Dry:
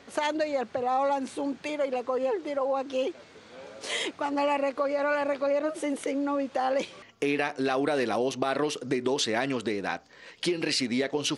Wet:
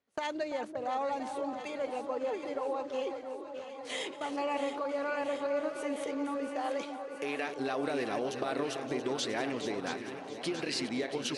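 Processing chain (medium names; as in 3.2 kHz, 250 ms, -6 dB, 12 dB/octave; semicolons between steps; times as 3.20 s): chunks repeated in reverse 410 ms, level -10 dB; gate -36 dBFS, range -26 dB; 6.56–7.47 s: bass shelf 190 Hz -11 dB; echo whose repeats swap between lows and highs 339 ms, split 1.1 kHz, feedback 85%, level -8.5 dB; trim -7.5 dB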